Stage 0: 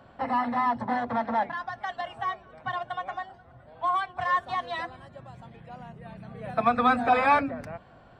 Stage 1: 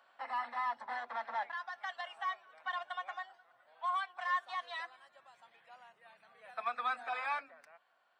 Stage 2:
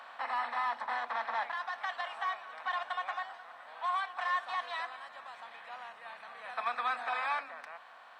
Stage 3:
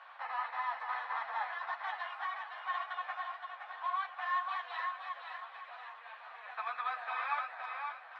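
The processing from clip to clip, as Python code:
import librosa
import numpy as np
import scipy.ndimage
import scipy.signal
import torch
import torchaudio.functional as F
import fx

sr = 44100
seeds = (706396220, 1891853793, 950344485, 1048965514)

y1 = scipy.signal.sosfilt(scipy.signal.butter(2, 1100.0, 'highpass', fs=sr, output='sos'), x)
y1 = fx.rider(y1, sr, range_db=5, speed_s=2.0)
y1 = y1 * librosa.db_to_amplitude(-8.0)
y2 = fx.bin_compress(y1, sr, power=0.6)
y3 = fx.bandpass_edges(y2, sr, low_hz=680.0, high_hz=3300.0)
y3 = fx.echo_feedback(y3, sr, ms=519, feedback_pct=38, wet_db=-5.0)
y3 = fx.ensemble(y3, sr)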